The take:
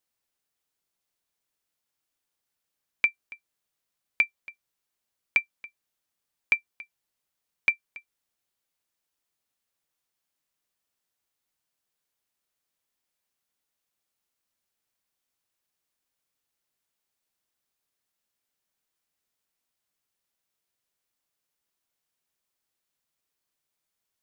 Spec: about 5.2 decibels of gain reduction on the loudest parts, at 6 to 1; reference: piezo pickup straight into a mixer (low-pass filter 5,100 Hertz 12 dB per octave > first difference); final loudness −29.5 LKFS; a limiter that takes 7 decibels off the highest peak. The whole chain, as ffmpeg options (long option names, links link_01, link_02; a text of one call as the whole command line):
ffmpeg -i in.wav -af "acompressor=threshold=-23dB:ratio=6,alimiter=limit=-17dB:level=0:latency=1,lowpass=5100,aderivative,volume=20dB" out.wav